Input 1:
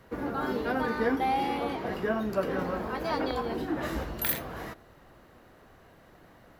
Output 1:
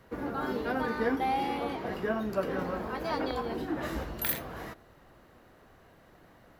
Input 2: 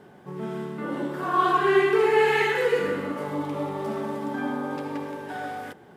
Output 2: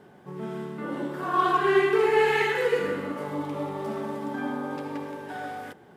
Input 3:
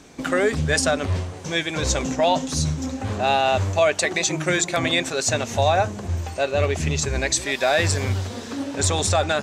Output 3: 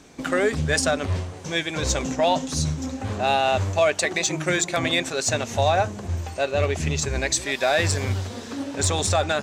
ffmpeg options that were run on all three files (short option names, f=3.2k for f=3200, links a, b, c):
-af "aeval=exprs='0.398*(cos(1*acos(clip(val(0)/0.398,-1,1)))-cos(1*PI/2))+0.0631*(cos(3*acos(clip(val(0)/0.398,-1,1)))-cos(3*PI/2))':c=same,asoftclip=type=tanh:threshold=-14dB,volume=3.5dB"